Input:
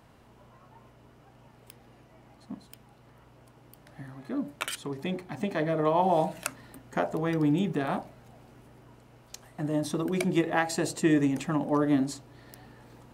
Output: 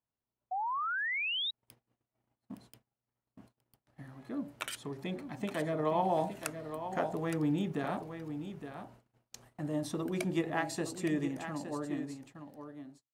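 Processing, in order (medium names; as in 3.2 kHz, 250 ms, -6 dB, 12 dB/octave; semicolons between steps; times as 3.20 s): fade out at the end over 2.98 s; on a send: delay 866 ms -9.5 dB; on the sum: gate -50 dBFS, range -32 dB; painted sound rise, 0.51–1.51 s, 720–3900 Hz -28 dBFS; trim -6 dB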